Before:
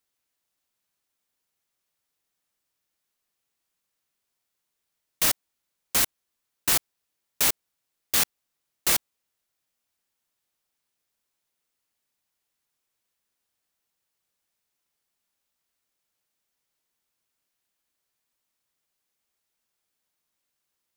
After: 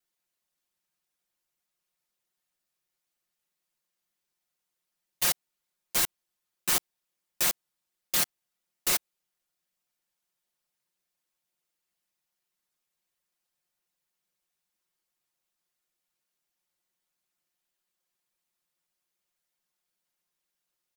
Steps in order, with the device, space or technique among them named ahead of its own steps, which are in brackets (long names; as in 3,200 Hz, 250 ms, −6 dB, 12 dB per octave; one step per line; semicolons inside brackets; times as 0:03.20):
ring-modulated robot voice (ring modulation 41 Hz; comb filter 5.6 ms, depth 100%)
level −3.5 dB